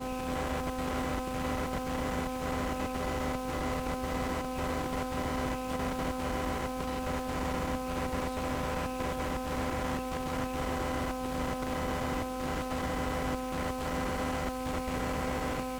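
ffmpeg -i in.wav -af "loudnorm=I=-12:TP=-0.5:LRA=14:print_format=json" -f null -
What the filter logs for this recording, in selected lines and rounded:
"input_i" : "-33.8",
"input_tp" : "-20.2",
"input_lra" : "0.2",
"input_thresh" : "-43.8",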